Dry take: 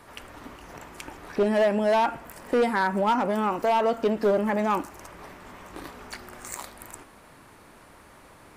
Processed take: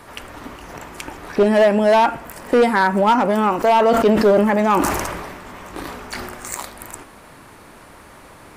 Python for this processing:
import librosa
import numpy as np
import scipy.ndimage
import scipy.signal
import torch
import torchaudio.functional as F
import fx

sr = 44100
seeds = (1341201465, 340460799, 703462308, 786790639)

y = fx.sustainer(x, sr, db_per_s=34.0, at=(3.57, 6.35))
y = F.gain(torch.from_numpy(y), 8.0).numpy()